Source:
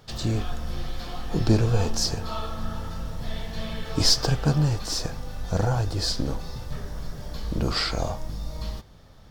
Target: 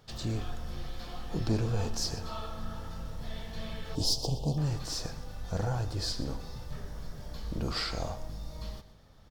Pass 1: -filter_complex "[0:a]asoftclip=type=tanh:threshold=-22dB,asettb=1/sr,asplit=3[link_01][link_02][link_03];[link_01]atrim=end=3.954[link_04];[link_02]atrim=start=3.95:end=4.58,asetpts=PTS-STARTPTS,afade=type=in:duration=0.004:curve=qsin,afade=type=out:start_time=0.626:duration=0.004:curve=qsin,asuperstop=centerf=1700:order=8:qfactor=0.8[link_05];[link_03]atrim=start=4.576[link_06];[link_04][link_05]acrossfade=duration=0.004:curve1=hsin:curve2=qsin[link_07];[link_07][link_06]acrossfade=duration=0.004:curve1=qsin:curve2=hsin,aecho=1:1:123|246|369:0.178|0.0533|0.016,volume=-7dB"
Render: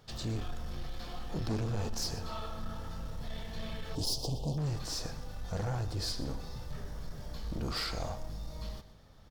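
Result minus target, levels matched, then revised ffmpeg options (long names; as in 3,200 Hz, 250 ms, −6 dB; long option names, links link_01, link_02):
soft clipping: distortion +9 dB
-filter_complex "[0:a]asoftclip=type=tanh:threshold=-13dB,asettb=1/sr,asplit=3[link_01][link_02][link_03];[link_01]atrim=end=3.954[link_04];[link_02]atrim=start=3.95:end=4.58,asetpts=PTS-STARTPTS,afade=type=in:duration=0.004:curve=qsin,afade=type=out:start_time=0.626:duration=0.004:curve=qsin,asuperstop=centerf=1700:order=8:qfactor=0.8[link_05];[link_03]atrim=start=4.576[link_06];[link_04][link_05]acrossfade=duration=0.004:curve1=hsin:curve2=qsin[link_07];[link_07][link_06]acrossfade=duration=0.004:curve1=qsin:curve2=hsin,aecho=1:1:123|246|369:0.178|0.0533|0.016,volume=-7dB"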